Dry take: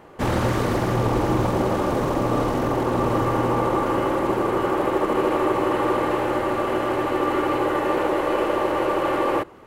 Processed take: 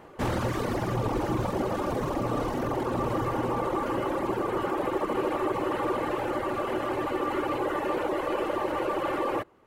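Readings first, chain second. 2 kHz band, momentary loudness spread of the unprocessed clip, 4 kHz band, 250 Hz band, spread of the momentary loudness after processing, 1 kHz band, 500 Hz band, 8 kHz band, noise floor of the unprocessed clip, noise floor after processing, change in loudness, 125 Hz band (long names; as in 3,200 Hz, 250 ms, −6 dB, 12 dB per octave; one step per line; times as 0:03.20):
−6.5 dB, 2 LU, −6.5 dB, −7.0 dB, 1 LU, −6.5 dB, −7.0 dB, −6.5 dB, −26 dBFS, −34 dBFS, −7.0 dB, −7.5 dB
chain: reverb reduction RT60 0.94 s
in parallel at −1 dB: brickwall limiter −22 dBFS, peak gain reduction 11 dB
on the sum: level −7.5 dB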